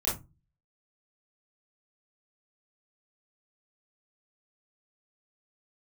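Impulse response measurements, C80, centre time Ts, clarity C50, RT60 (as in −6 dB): 17.5 dB, 36 ms, 7.0 dB, 0.25 s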